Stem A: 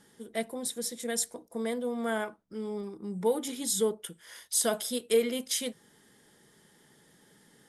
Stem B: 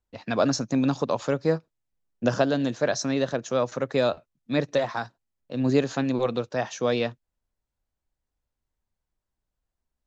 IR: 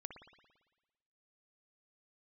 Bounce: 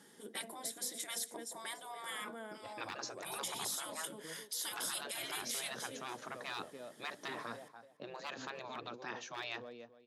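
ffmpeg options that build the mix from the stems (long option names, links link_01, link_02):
-filter_complex "[0:a]volume=0.5dB,asplit=2[link_01][link_02];[link_02]volume=-17dB[link_03];[1:a]highshelf=frequency=6500:gain=-12,volume=15.5dB,asoftclip=hard,volume=-15.5dB,adelay=2500,volume=-7dB,asplit=2[link_04][link_05];[link_05]volume=-18.5dB[link_06];[link_03][link_06]amix=inputs=2:normalize=0,aecho=0:1:287|574|861:1|0.21|0.0441[link_07];[link_01][link_04][link_07]amix=inputs=3:normalize=0,afftfilt=real='re*lt(hypot(re,im),0.0562)':imag='im*lt(hypot(re,im),0.0562)':win_size=1024:overlap=0.75,highpass=190,alimiter=level_in=4.5dB:limit=-24dB:level=0:latency=1:release=121,volume=-4.5dB"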